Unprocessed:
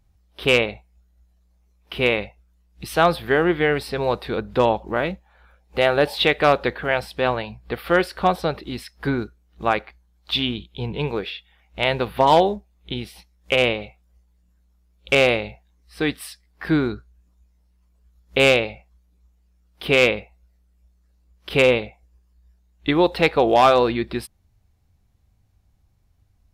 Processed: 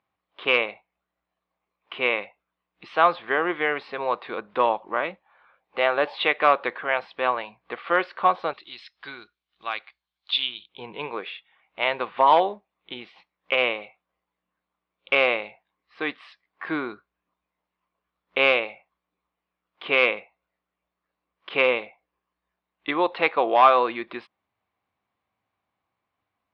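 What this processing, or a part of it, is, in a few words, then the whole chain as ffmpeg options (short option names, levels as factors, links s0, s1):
phone earpiece: -filter_complex "[0:a]highpass=390,equalizer=f=420:t=q:w=4:g=-3,equalizer=f=1100:t=q:w=4:g=9,equalizer=f=2200:t=q:w=4:g=3,lowpass=f=3400:w=0.5412,lowpass=f=3400:w=1.3066,asettb=1/sr,asplit=3[s0][s1][s2];[s0]atrim=end=8.534[s3];[s1]atrim=start=8.53:end=10.69,asetpts=PTS-STARTPTS,afade=t=in:d=0.004:c=qsin,afade=t=out:st=2.156:d=0.004:c=qsin,equalizer=f=125:t=o:w=1:g=-6,equalizer=f=250:t=o:w=1:g=-12,equalizer=f=500:t=o:w=1:g=-10,equalizer=f=1000:t=o:w=1:g=-9,equalizer=f=2000:t=o:w=1:g=-4,equalizer=f=4000:t=o:w=1:g=8,equalizer=f=8000:t=o:w=1:g=6[s4];[s2]atrim=start=10.686[s5];[s3][s4]acrossfade=d=0.004:c1=hsin:c2=qsin[s6];[s6][s5]acrossfade=d=0.004:c1=qsin:c2=hsin,volume=0.668"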